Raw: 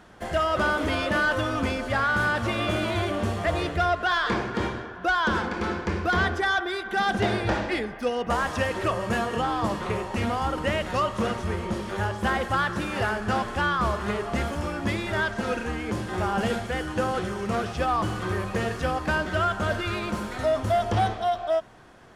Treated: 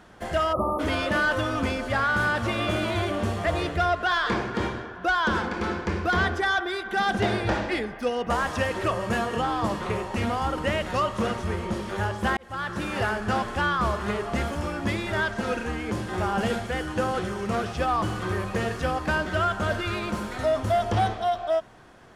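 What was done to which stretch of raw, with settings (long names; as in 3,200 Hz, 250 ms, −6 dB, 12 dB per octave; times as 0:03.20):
0:00.53–0:00.80: time-frequency box erased 1,300–9,900 Hz
0:12.37–0:12.87: fade in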